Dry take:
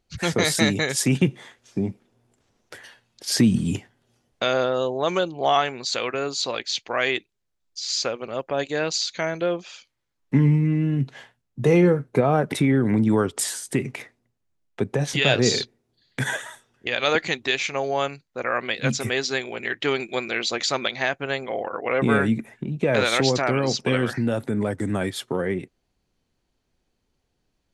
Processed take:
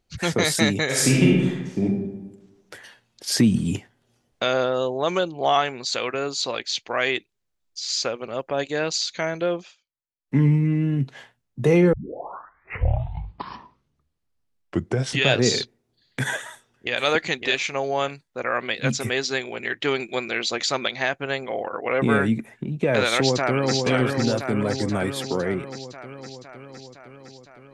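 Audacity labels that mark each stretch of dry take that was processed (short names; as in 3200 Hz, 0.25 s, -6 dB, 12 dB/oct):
0.850000	1.830000	reverb throw, RT60 1.1 s, DRR -4 dB
9.610000	10.390000	dip -21.5 dB, fades 0.14 s
11.930000	11.930000	tape start 3.40 s
16.410000	17.010000	echo throw 0.56 s, feedback 20%, level -6 dB
23.170000	23.740000	echo throw 0.51 s, feedback 70%, level -4.5 dB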